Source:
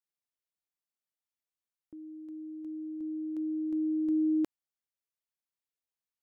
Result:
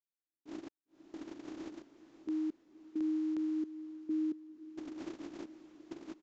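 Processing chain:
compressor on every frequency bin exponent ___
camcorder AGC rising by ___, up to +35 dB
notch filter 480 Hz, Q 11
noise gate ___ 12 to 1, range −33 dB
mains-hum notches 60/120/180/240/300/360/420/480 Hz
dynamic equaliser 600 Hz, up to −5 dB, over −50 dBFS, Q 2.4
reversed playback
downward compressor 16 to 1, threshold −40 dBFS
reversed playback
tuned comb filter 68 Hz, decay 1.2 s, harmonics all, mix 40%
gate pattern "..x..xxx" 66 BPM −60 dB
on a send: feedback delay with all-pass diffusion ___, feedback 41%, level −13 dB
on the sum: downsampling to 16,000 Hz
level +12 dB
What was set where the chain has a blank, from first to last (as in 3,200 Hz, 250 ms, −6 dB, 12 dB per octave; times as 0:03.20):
0.2, 41 dB per second, −30 dBFS, 544 ms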